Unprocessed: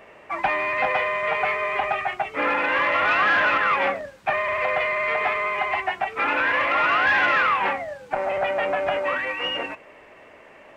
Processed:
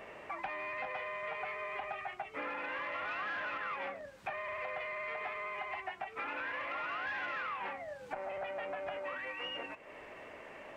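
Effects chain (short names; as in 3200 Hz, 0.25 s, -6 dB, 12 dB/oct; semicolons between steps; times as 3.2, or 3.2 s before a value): compressor 3:1, threshold -41 dBFS, peak gain reduction 17.5 dB; gain -2 dB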